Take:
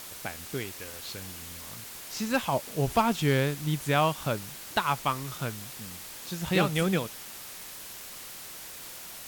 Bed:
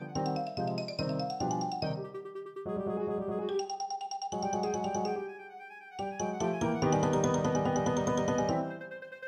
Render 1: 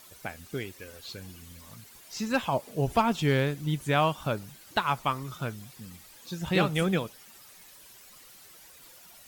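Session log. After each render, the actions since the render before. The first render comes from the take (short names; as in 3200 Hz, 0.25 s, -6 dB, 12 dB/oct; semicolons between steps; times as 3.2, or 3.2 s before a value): denoiser 12 dB, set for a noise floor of -43 dBFS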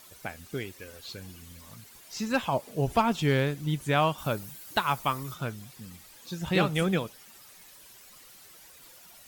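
4.18–5.34 high shelf 9400 Hz +10.5 dB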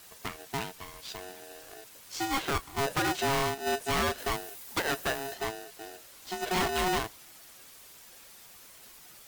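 hard clip -24.5 dBFS, distortion -8 dB; polarity switched at an audio rate 550 Hz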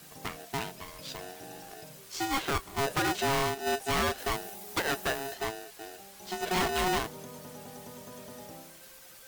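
add bed -17.5 dB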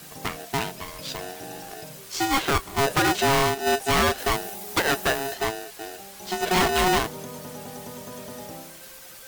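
gain +7.5 dB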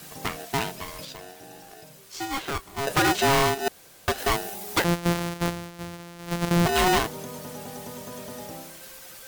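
1.05–2.87 gain -7.5 dB; 3.68–4.08 room tone; 4.84–6.66 sample sorter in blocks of 256 samples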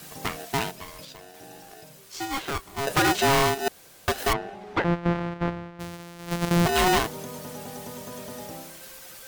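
0.71–1.34 gain -4 dB; 4.33–5.8 LPF 2000 Hz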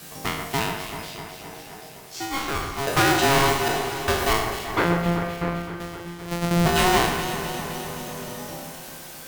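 spectral trails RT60 0.72 s; echo with dull and thin repeats by turns 0.129 s, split 2300 Hz, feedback 83%, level -7.5 dB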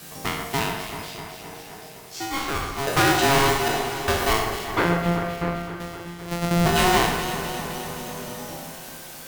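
flutter echo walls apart 10.7 m, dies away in 0.32 s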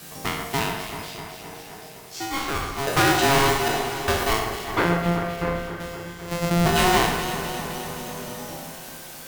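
4.23–4.67 half-wave gain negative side -3 dB; 5.35–6.5 flutter echo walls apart 5.3 m, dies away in 0.35 s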